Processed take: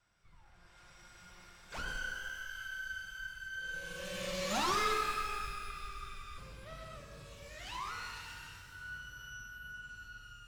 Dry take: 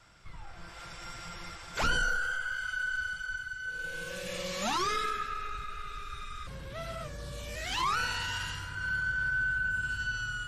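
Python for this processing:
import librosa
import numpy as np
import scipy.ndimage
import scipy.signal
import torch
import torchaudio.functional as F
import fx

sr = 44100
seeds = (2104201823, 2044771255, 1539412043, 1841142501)

y = fx.self_delay(x, sr, depth_ms=0.055)
y = fx.doppler_pass(y, sr, speed_mps=10, closest_m=9.4, pass_at_s=4.75)
y = fx.rev_shimmer(y, sr, seeds[0], rt60_s=1.6, semitones=12, shimmer_db=-8, drr_db=4.0)
y = y * 10.0 ** (-2.5 / 20.0)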